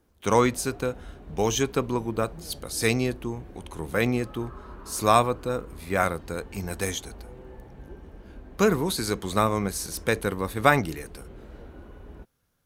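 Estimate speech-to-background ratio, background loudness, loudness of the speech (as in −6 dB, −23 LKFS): 19.5 dB, −46.0 LKFS, −26.5 LKFS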